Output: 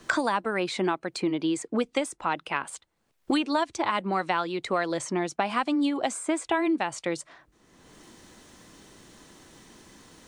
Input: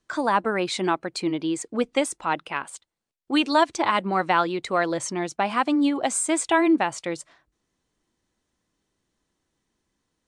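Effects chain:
multiband upward and downward compressor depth 100%
level −4.5 dB

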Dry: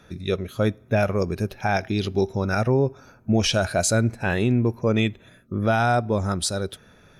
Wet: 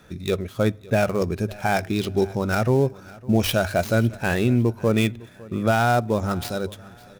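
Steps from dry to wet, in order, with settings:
gap after every zero crossing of 0.065 ms
mains-hum notches 50/100 Hz
repeating echo 556 ms, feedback 32%, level −21.5 dB
level +1 dB

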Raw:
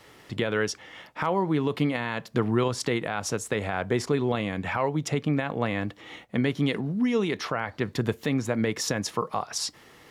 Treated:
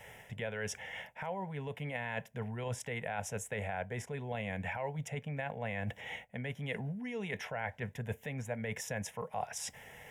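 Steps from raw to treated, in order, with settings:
reversed playback
downward compressor 10 to 1, threshold −33 dBFS, peak gain reduction 15 dB
reversed playback
phaser with its sweep stopped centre 1,200 Hz, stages 6
level +3 dB

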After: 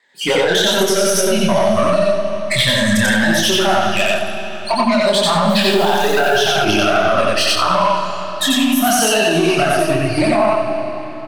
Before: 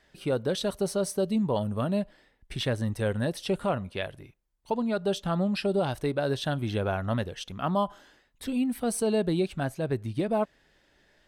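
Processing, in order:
rippled gain that drifts along the octave scale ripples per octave 1, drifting −0.37 Hz, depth 10 dB
meter weighting curve A
noise reduction from a noise print of the clip's start 25 dB
0:08.87–0:09.28: parametric band 2,300 Hz +11.5 dB 2.9 octaves
downward compressor, threshold −38 dBFS, peak gain reduction 16.5 dB
soft clipping −37 dBFS, distortion −13 dB
0:05.48–0:06.39: background noise white −66 dBFS
pitch vibrato 13 Hz 66 cents
multi-voice chorus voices 2, 1.2 Hz, delay 26 ms, depth 3.4 ms
loudspeakers that aren't time-aligned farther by 31 metres 0 dB, 56 metres −9 dB
comb and all-pass reverb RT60 4.2 s, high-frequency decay 0.85×, pre-delay 15 ms, DRR 8 dB
boost into a limiter +35.5 dB
level −4.5 dB

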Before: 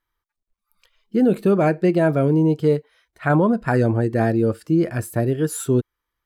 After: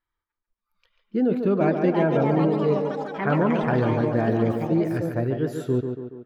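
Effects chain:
moving average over 5 samples
delay with pitch and tempo change per echo 745 ms, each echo +5 semitones, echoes 3, each echo −6 dB
tape delay 143 ms, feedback 60%, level −5 dB, low-pass 2,800 Hz
level −5 dB

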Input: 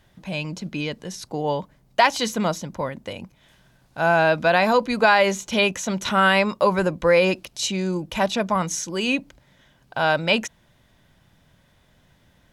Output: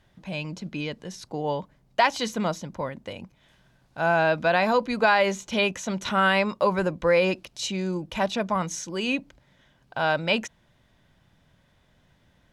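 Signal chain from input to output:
high-shelf EQ 9,000 Hz −9 dB
level −3.5 dB

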